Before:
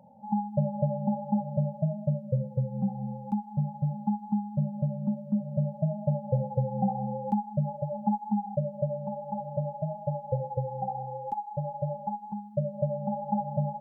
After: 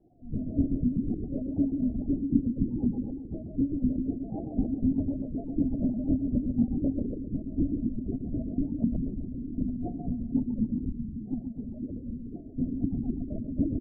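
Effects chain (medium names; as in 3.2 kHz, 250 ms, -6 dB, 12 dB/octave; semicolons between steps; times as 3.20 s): octave divider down 2 oct, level +1 dB; 11.08–12.52 s: steep high-pass 160 Hz 72 dB/octave; spectral gate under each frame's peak -15 dB weak; tilt EQ -4.5 dB/octave; small resonant body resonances 240/670 Hz, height 14 dB, ringing for 100 ms; loudest bins only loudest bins 8; wow and flutter 130 cents; 8.90–9.99 s: doubling 46 ms -6 dB; feedback delay 131 ms, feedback 49%, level -5 dB; LPC vocoder at 8 kHz whisper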